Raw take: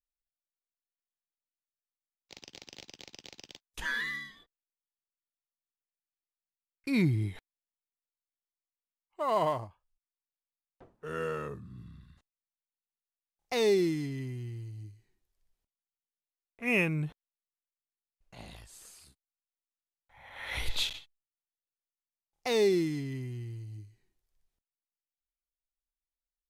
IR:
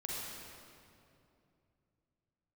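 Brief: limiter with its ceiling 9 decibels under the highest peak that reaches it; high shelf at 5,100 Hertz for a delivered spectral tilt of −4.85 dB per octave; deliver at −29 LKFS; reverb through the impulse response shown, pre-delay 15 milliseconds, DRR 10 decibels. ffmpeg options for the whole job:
-filter_complex "[0:a]highshelf=frequency=5100:gain=-6,alimiter=level_in=2dB:limit=-24dB:level=0:latency=1,volume=-2dB,asplit=2[link_01][link_02];[1:a]atrim=start_sample=2205,adelay=15[link_03];[link_02][link_03]afir=irnorm=-1:irlink=0,volume=-11.5dB[link_04];[link_01][link_04]amix=inputs=2:normalize=0,volume=8dB"

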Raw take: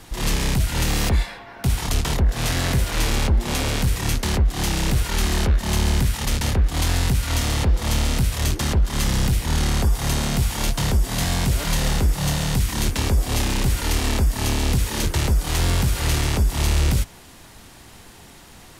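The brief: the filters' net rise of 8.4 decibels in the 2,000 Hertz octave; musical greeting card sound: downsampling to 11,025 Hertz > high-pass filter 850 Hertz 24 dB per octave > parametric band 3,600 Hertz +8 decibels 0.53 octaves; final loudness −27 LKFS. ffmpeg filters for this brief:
ffmpeg -i in.wav -af "equalizer=frequency=2000:width_type=o:gain=9,aresample=11025,aresample=44100,highpass=frequency=850:width=0.5412,highpass=frequency=850:width=1.3066,equalizer=frequency=3600:width_type=o:width=0.53:gain=8,volume=-5dB" out.wav

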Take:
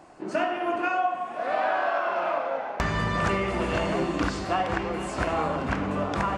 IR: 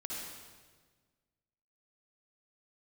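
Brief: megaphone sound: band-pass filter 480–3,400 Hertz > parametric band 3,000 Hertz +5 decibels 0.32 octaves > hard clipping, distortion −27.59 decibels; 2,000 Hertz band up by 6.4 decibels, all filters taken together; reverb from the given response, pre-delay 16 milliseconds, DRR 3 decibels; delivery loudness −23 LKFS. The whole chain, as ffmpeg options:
-filter_complex "[0:a]equalizer=frequency=2000:width_type=o:gain=8.5,asplit=2[link_01][link_02];[1:a]atrim=start_sample=2205,adelay=16[link_03];[link_02][link_03]afir=irnorm=-1:irlink=0,volume=-3.5dB[link_04];[link_01][link_04]amix=inputs=2:normalize=0,highpass=480,lowpass=3400,equalizer=frequency=3000:width_type=o:width=0.32:gain=5,asoftclip=type=hard:threshold=-13.5dB,volume=1dB"

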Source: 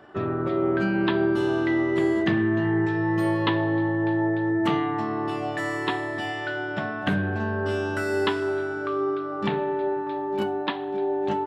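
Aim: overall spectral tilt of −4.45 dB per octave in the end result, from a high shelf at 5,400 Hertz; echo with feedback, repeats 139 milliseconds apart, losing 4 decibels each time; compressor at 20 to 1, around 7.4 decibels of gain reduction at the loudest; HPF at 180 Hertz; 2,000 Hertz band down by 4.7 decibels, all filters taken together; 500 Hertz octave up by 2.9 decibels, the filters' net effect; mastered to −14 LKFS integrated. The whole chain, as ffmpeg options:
ffmpeg -i in.wav -af "highpass=180,equalizer=frequency=500:width_type=o:gain=5,equalizer=frequency=2000:width_type=o:gain=-7.5,highshelf=frequency=5400:gain=8,acompressor=threshold=-24dB:ratio=20,aecho=1:1:139|278|417|556|695|834|973|1112|1251:0.631|0.398|0.25|0.158|0.0994|0.0626|0.0394|0.0249|0.0157,volume=14dB" out.wav

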